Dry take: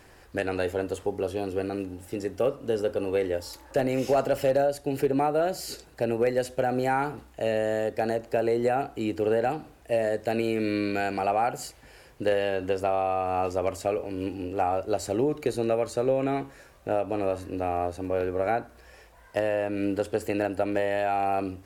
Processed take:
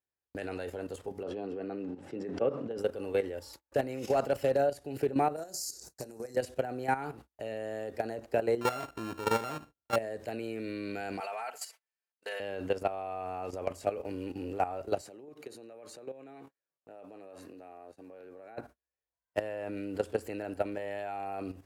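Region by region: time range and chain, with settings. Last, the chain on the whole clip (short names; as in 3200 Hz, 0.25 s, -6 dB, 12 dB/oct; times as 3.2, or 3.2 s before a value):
1.23–2.78 HPF 130 Hz 24 dB/oct + tape spacing loss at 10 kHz 25 dB + sustainer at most 38 dB/s
5.36–6.36 resonant high shelf 4200 Hz +13.5 dB, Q 3 + compressor 12:1, threshold -32 dBFS + doubler 31 ms -11 dB
8.61–9.96 sample sorter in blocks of 32 samples + high shelf 3500 Hz -8 dB + doubler 27 ms -13.5 dB
11.2–12.4 HPF 960 Hz + comb 4.5 ms, depth 76%
15.01–18.58 compressor 3:1, threshold -38 dBFS + HPF 180 Hz
whole clip: level quantiser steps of 12 dB; gate -49 dBFS, range -37 dB; HPF 52 Hz; gain -1.5 dB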